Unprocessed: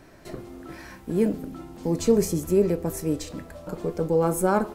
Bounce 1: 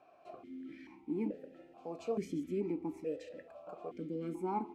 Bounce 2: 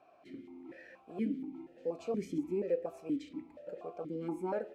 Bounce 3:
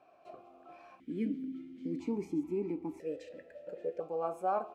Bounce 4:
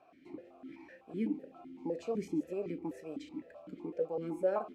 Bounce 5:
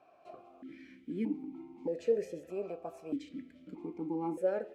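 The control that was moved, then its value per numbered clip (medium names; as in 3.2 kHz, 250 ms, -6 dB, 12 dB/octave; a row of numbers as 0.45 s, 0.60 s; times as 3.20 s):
stepped vowel filter, rate: 2.3 Hz, 4.2 Hz, 1 Hz, 7.9 Hz, 1.6 Hz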